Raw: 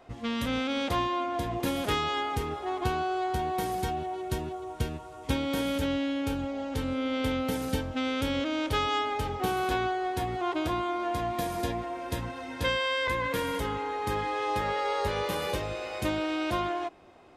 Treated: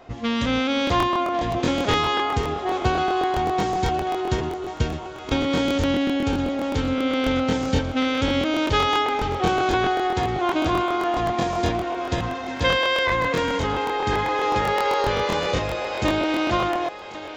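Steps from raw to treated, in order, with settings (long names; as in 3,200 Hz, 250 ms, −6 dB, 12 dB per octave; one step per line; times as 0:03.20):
downsampling to 16,000 Hz
feedback echo with a high-pass in the loop 1,091 ms, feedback 60%, high-pass 340 Hz, level −13 dB
regular buffer underruns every 0.13 s, samples 1,024, repeat, from 0:00.85
level +7.5 dB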